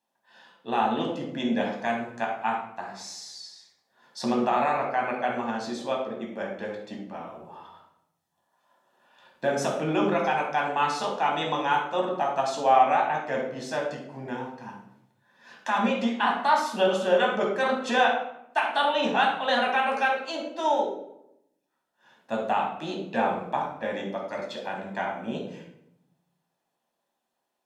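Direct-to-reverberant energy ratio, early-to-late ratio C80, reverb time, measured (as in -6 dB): -0.5 dB, 7.5 dB, 0.80 s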